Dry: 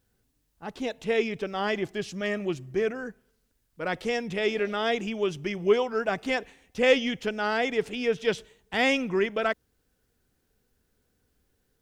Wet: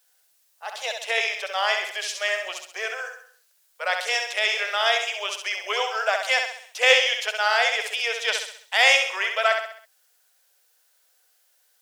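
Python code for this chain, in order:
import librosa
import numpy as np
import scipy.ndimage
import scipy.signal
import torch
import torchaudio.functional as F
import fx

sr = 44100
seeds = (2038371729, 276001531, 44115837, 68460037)

y = scipy.signal.sosfilt(scipy.signal.butter(8, 550.0, 'highpass', fs=sr, output='sos'), x)
y = fx.high_shelf(y, sr, hz=2400.0, db=10.0)
y = fx.echo_feedback(y, sr, ms=66, feedback_pct=45, wet_db=-5.5)
y = y * 10.0 ** (3.5 / 20.0)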